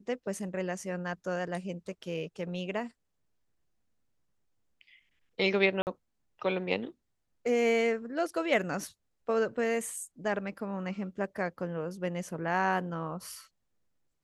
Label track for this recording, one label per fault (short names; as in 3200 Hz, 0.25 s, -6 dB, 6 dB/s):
5.820000	5.870000	gap 49 ms